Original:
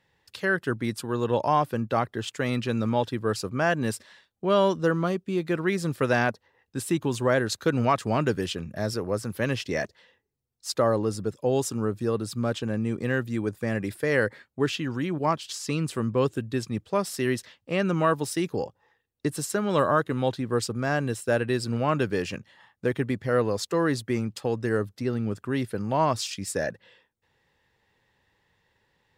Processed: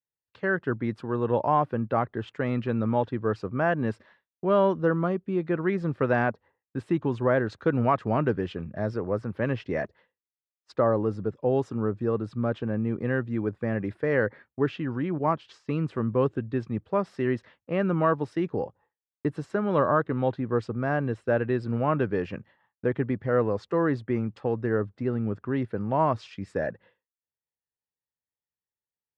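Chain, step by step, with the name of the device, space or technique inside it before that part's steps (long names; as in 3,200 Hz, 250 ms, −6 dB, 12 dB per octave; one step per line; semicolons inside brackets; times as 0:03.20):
hearing-loss simulation (low-pass filter 1,700 Hz 12 dB per octave; downward expander −48 dBFS)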